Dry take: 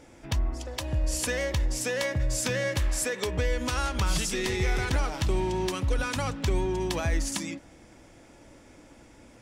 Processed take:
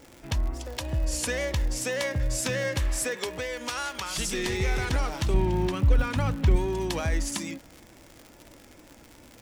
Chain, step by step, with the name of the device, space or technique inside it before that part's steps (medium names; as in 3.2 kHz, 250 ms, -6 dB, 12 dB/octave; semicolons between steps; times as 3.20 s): 3.16–4.17 s: high-pass 350 Hz -> 980 Hz 6 dB/octave; 5.34–6.56 s: tone controls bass +7 dB, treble -10 dB; vinyl LP (wow and flutter; crackle 120 per s -35 dBFS; white noise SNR 43 dB)